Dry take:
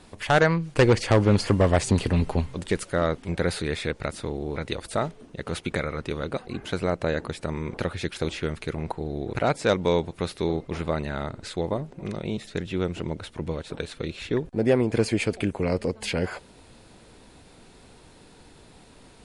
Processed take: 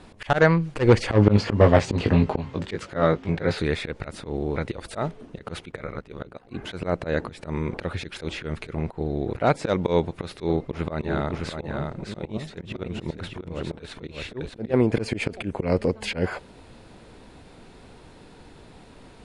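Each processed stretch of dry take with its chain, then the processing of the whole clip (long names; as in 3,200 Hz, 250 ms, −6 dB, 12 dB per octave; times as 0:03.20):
0:01.13–0:03.58: high-pass filter 58 Hz + parametric band 9,600 Hz −14.5 dB 0.58 octaves + double-tracking delay 19 ms −5 dB
0:05.71–0:06.49: ring modulation 30 Hz + expander for the loud parts, over −45 dBFS
0:10.40–0:14.74: volume swells 126 ms + single-tap delay 609 ms −5 dB
whole clip: high-shelf EQ 5,000 Hz −11 dB; volume swells 106 ms; level +4 dB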